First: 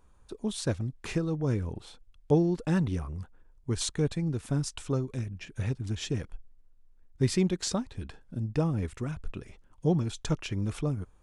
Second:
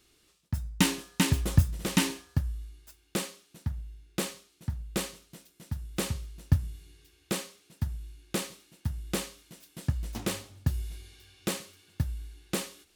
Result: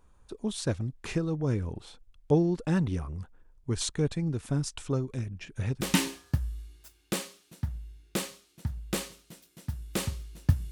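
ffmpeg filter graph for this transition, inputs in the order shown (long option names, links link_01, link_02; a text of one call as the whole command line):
ffmpeg -i cue0.wav -i cue1.wav -filter_complex "[0:a]apad=whole_dur=10.71,atrim=end=10.71,atrim=end=5.812[link_01];[1:a]atrim=start=1.838:end=6.74[link_02];[link_01][link_02]acrossfade=duration=0.004:curve1=hsin:curve2=hsin" out.wav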